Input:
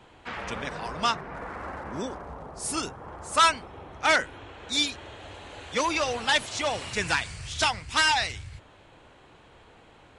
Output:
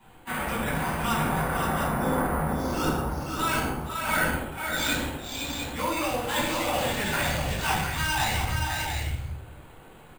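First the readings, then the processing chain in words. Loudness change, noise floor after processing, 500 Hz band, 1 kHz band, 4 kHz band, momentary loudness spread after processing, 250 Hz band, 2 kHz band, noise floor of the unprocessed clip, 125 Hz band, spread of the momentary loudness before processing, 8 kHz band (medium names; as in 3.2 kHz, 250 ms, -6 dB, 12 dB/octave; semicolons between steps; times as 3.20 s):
-0.5 dB, -49 dBFS, +2.0 dB, +0.5 dB, -3.5 dB, 6 LU, +7.5 dB, -0.5 dB, -55 dBFS, +11.0 dB, 19 LU, 0.0 dB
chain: hum notches 50/100 Hz; gate -41 dBFS, range -10 dB; reverse; compression 6:1, threshold -37 dBFS, peak gain reduction 20 dB; reverse; multi-tap echo 121/467/522/703 ms -11.5/-12.5/-5/-6 dB; simulated room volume 1000 m³, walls furnished, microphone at 9.6 m; careless resampling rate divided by 4×, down filtered, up hold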